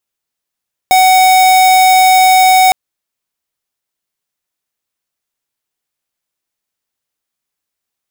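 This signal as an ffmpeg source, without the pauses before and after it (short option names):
-f lavfi -i "aevalsrc='0.447*(2*lt(mod(748*t,1),0.5)-1)':d=1.81:s=44100"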